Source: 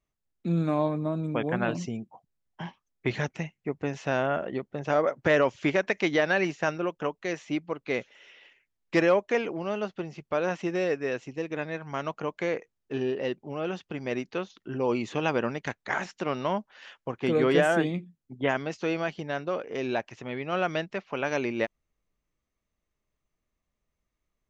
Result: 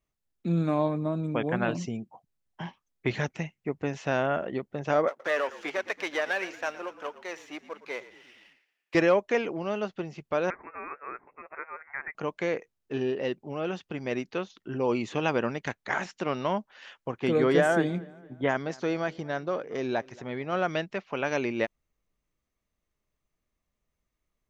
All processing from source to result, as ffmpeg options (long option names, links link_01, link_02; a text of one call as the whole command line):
ffmpeg -i in.wav -filter_complex "[0:a]asettb=1/sr,asplit=3[link_01][link_02][link_03];[link_01]atrim=end=5.084[link_04];[link_02]atrim=start=5.08:end=8.95,asetpts=PTS-STARTPTS,afade=type=in:duration=0.004:curve=qsin,afade=type=out:start_time=3.866:duration=0.004:curve=qsin,aeval=exprs='if(lt(val(0),0),0.447*val(0),val(0))':channel_layout=same,highpass=530,asplit=6[link_05][link_06][link_07][link_08][link_09][link_10];[link_06]adelay=114,afreqshift=-45,volume=-16dB[link_11];[link_07]adelay=228,afreqshift=-90,volume=-21.7dB[link_12];[link_08]adelay=342,afreqshift=-135,volume=-27.4dB[link_13];[link_09]adelay=456,afreqshift=-180,volume=-33dB[link_14];[link_10]adelay=570,afreqshift=-225,volume=-38.7dB[link_15];[link_05][link_11][link_12][link_13][link_14][link_15]amix=inputs=6:normalize=0,atrim=end_sample=170667[link_16];[link_03]atrim=start=8.946[link_17];[link_04][link_16]acrossfade=duration=0.004:curve1=hsin:curve2=qsin[link_18];[link_18][link_17]acrossfade=duration=0.004:curve1=qsin:curve2=hsin,asettb=1/sr,asplit=3[link_19][link_20][link_21];[link_19]atrim=end=10.504[link_22];[link_20]atrim=start=10.5:end=12.15,asetpts=PTS-STARTPTS,afade=type=in:duration=0.004:curve=qsin,afade=type=out:start_time=1.646:duration=0.004:curve=qsin,highpass=frequency=990:width=0.5412,highpass=frequency=990:width=1.3066,lowpass=frequency=2600:width_type=q:width=0.5098,lowpass=frequency=2600:width_type=q:width=0.6013,lowpass=frequency=2600:width_type=q:width=0.9,lowpass=frequency=2600:width_type=q:width=2.563,afreqshift=-3000[link_23];[link_21]atrim=start=12.146[link_24];[link_22][link_23]acrossfade=duration=0.004:curve1=hsin:curve2=qsin[link_25];[link_25][link_24]acrossfade=duration=0.004:curve1=qsin:curve2=hsin,asettb=1/sr,asplit=3[link_26][link_27][link_28];[link_26]atrim=end=17.384[link_29];[link_27]atrim=start=17.38:end=20.69,asetpts=PTS-STARTPTS,afade=type=in:duration=0.004:curve=qsin,afade=type=out:start_time=3.306:duration=0.004:curve=qsin,equalizer=frequency=2700:width=4:gain=-8,asplit=2[link_30][link_31];[link_31]adelay=229,lowpass=frequency=4000:poles=1,volume=-23dB,asplit=2[link_32][link_33];[link_33]adelay=229,lowpass=frequency=4000:poles=1,volume=0.47,asplit=2[link_34][link_35];[link_35]adelay=229,lowpass=frequency=4000:poles=1,volume=0.47[link_36];[link_30][link_32][link_34][link_36]amix=inputs=4:normalize=0,atrim=end_sample=145971[link_37];[link_28]atrim=start=20.686[link_38];[link_29][link_37]acrossfade=duration=0.004:curve1=hsin:curve2=qsin[link_39];[link_39][link_38]acrossfade=duration=0.004:curve1=qsin:curve2=hsin" out.wav